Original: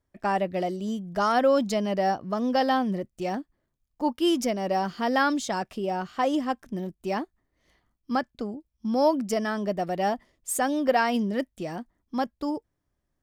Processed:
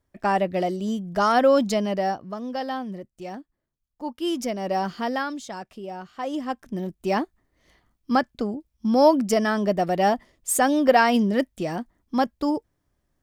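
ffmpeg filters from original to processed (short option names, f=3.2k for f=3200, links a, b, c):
-af "volume=23.5dB,afade=t=out:st=1.69:d=0.71:silence=0.334965,afade=t=in:st=4.06:d=0.86:silence=0.398107,afade=t=out:st=4.92:d=0.34:silence=0.375837,afade=t=in:st=6.2:d=0.97:silence=0.251189"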